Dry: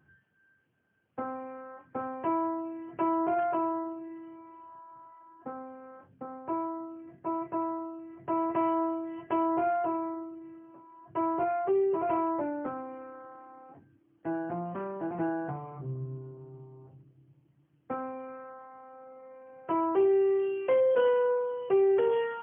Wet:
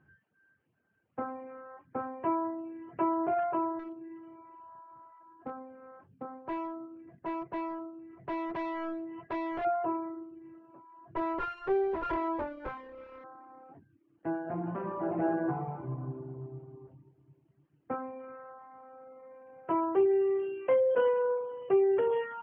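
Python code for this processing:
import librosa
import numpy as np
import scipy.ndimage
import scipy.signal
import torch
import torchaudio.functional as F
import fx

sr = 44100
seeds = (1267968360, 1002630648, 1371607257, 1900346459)

y = fx.clip_hard(x, sr, threshold_db=-31.5, at=(3.79, 9.65))
y = fx.lower_of_two(y, sr, delay_ms=2.1, at=(11.16, 13.24))
y = fx.reverb_throw(y, sr, start_s=14.42, length_s=2.28, rt60_s=1.8, drr_db=-0.5)
y = fx.dereverb_blind(y, sr, rt60_s=0.56)
y = scipy.signal.sosfilt(scipy.signal.butter(2, 2500.0, 'lowpass', fs=sr, output='sos'), y)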